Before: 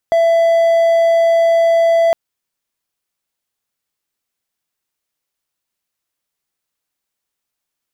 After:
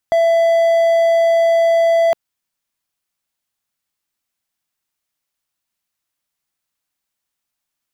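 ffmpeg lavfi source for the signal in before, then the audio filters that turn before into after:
-f lavfi -i "aevalsrc='0.447*(1-4*abs(mod(667*t+0.25,1)-0.5))':duration=2.01:sample_rate=44100"
-af "equalizer=frequency=440:width=2.4:gain=-6"

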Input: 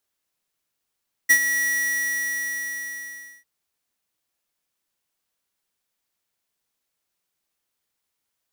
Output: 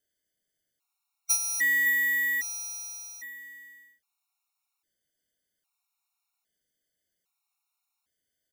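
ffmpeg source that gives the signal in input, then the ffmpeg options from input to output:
-f lavfi -i "aevalsrc='0.237*(2*lt(mod(1930*t,1),0.5)-1)':duration=2.15:sample_rate=44100,afade=type=in:duration=0.017,afade=type=out:start_time=0.017:duration=0.073:silence=0.316,afade=type=out:start_time=0.33:duration=1.82"
-filter_complex "[0:a]asplit=2[link_01][link_02];[link_02]aecho=0:1:561:0.266[link_03];[link_01][link_03]amix=inputs=2:normalize=0,afftfilt=real='re*gt(sin(2*PI*0.62*pts/sr)*(1-2*mod(floor(b*sr/1024/730),2)),0)':imag='im*gt(sin(2*PI*0.62*pts/sr)*(1-2*mod(floor(b*sr/1024/730),2)),0)':win_size=1024:overlap=0.75"

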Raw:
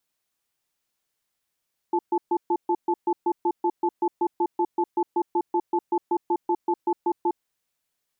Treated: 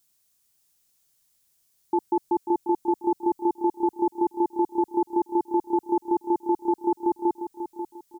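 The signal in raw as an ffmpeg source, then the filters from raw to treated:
-f lavfi -i "aevalsrc='0.0794*(sin(2*PI*348*t)+sin(2*PI*871*t))*clip(min(mod(t,0.19),0.06-mod(t,0.19))/0.005,0,1)':duration=5.48:sample_rate=44100"
-filter_complex "[0:a]bass=frequency=250:gain=9,treble=frequency=4000:gain=13,asplit=2[link_01][link_02];[link_02]aecho=0:1:540|1080|1620:0.335|0.104|0.0322[link_03];[link_01][link_03]amix=inputs=2:normalize=0"

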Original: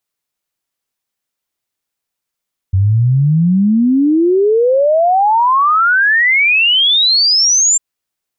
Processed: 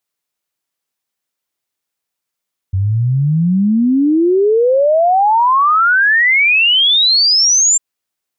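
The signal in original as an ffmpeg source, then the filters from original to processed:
-f lavfi -i "aevalsrc='0.398*clip(min(t,5.05-t)/0.01,0,1)*sin(2*PI*92*5.05/log(7400/92)*(exp(log(7400/92)*t/5.05)-1))':duration=5.05:sample_rate=44100"
-af "lowshelf=frequency=100:gain=-7"

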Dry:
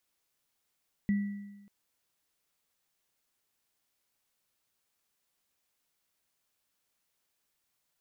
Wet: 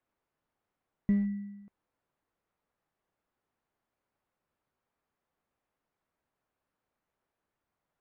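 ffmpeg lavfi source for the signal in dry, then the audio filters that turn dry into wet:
-f lavfi -i "aevalsrc='0.0708*pow(10,-3*t/1.11)*sin(2*PI*202*t)+0.00891*pow(10,-3*t/1)*sin(2*PI*1960*t)':duration=0.59:sample_rate=44100"
-filter_complex "[0:a]lowpass=1300,asplit=2[link_01][link_02];[link_02]aeval=exprs='clip(val(0),-1,0.0237)':channel_layout=same,volume=-4dB[link_03];[link_01][link_03]amix=inputs=2:normalize=0" -ar 48000 -c:a libopus -b:a 64k

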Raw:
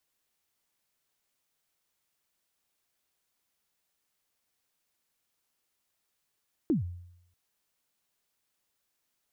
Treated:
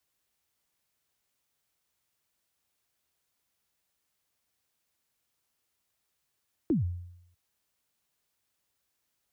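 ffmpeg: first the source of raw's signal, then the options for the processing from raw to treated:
-f lavfi -i "aevalsrc='0.0944*pow(10,-3*t/0.77)*sin(2*PI*(360*0.131/log(88/360)*(exp(log(88/360)*min(t,0.131)/0.131)-1)+88*max(t-0.131,0)))':duration=0.64:sample_rate=44100"
-filter_complex "[0:a]highpass=41,acrossover=split=120|460[link_01][link_02][link_03];[link_01]acontrast=55[link_04];[link_04][link_02][link_03]amix=inputs=3:normalize=0"

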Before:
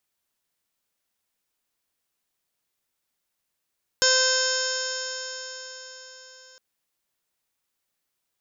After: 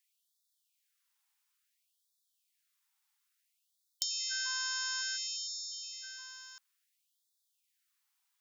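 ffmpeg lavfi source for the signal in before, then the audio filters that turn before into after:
-f lavfi -i "aevalsrc='0.0631*pow(10,-3*t/4.63)*sin(2*PI*515.21*t)+0.0251*pow(10,-3*t/4.63)*sin(2*PI*1031.67*t)+0.0794*pow(10,-3*t/4.63)*sin(2*PI*1550.62*t)+0.01*pow(10,-3*t/4.63)*sin(2*PI*2073.31*t)+0.0133*pow(10,-3*t/4.63)*sin(2*PI*2600.94*t)+0.0316*pow(10,-3*t/4.63)*sin(2*PI*3134.73*t)+0.0282*pow(10,-3*t/4.63)*sin(2*PI*3675.85*t)+0.0211*pow(10,-3*t/4.63)*sin(2*PI*4225.44*t)+0.0355*pow(10,-3*t/4.63)*sin(2*PI*4784.64*t)+0.0944*pow(10,-3*t/4.63)*sin(2*PI*5354.51*t)+0.0112*pow(10,-3*t/4.63)*sin(2*PI*5936.13*t)+0.0531*pow(10,-3*t/4.63)*sin(2*PI*6530.48*t)+0.0473*pow(10,-3*t/4.63)*sin(2*PI*7138.55*t)':duration=2.56:sample_rate=44100"
-filter_complex "[0:a]acrossover=split=150|690[link_01][link_02][link_03];[link_03]acompressor=threshold=-32dB:ratio=12[link_04];[link_01][link_02][link_04]amix=inputs=3:normalize=0,afftfilt=real='re*gte(b*sr/1024,720*pow(3400/720,0.5+0.5*sin(2*PI*0.58*pts/sr)))':imag='im*gte(b*sr/1024,720*pow(3400/720,0.5+0.5*sin(2*PI*0.58*pts/sr)))':win_size=1024:overlap=0.75"

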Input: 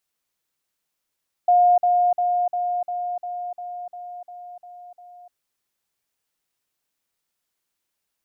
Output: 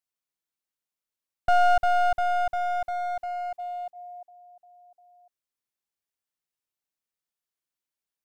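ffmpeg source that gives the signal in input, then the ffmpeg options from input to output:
-f lavfi -i "aevalsrc='pow(10,(-12-3*floor(t/0.35))/20)*sin(2*PI*712*t)*clip(min(mod(t,0.35),0.3-mod(t,0.35))/0.005,0,1)':duration=3.85:sample_rate=44100"
-af "agate=range=-12dB:threshold=-36dB:ratio=16:detection=peak,aeval=exprs='clip(val(0),-1,0.0266)':channel_layout=same"

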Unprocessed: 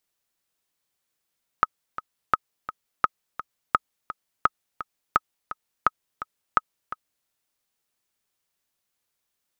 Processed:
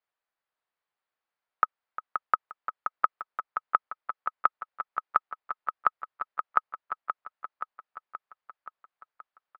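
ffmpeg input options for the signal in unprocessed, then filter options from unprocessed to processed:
-f lavfi -i "aevalsrc='pow(10,(-4-14*gte(mod(t,2*60/170),60/170))/20)*sin(2*PI*1270*mod(t,60/170))*exp(-6.91*mod(t,60/170)/0.03)':duration=5.64:sample_rate=44100"
-filter_complex "[0:a]acrossover=split=550 2000:gain=0.178 1 0.178[link_01][link_02][link_03];[link_01][link_02][link_03]amix=inputs=3:normalize=0,asplit=2[link_04][link_05];[link_05]aecho=0:1:526|1052|1578|2104|2630|3156|3682|4208:0.422|0.253|0.152|0.0911|0.0547|0.0328|0.0197|0.0118[link_06];[link_04][link_06]amix=inputs=2:normalize=0,aresample=11025,aresample=44100"

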